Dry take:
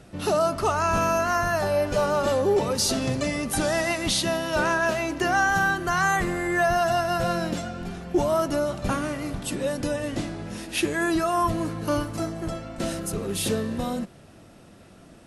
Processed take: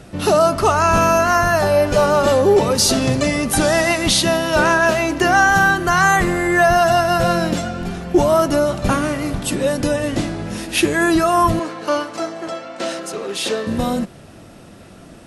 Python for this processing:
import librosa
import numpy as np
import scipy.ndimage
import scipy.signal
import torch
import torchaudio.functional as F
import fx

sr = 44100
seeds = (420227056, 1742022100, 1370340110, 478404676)

y = fx.bandpass_edges(x, sr, low_hz=430.0, high_hz=6300.0, at=(11.59, 13.67))
y = F.gain(torch.from_numpy(y), 8.5).numpy()